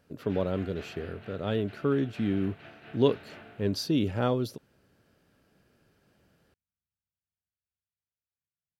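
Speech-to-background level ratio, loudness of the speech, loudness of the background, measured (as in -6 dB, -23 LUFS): 19.0 dB, -30.0 LUFS, -49.0 LUFS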